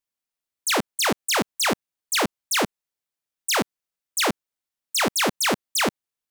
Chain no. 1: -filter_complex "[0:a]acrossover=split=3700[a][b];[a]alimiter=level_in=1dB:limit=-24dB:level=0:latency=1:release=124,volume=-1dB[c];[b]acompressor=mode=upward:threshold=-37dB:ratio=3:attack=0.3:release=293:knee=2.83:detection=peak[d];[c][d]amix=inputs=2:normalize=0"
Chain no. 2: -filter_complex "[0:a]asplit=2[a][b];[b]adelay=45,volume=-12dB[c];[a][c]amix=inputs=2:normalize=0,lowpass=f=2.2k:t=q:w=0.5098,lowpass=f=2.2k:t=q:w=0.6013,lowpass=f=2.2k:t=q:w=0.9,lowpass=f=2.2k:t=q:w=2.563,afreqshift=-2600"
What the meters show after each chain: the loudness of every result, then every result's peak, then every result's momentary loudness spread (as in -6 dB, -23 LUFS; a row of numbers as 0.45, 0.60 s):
-26.5, -25.5 LUFS; -15.5, -11.5 dBFS; 8, 6 LU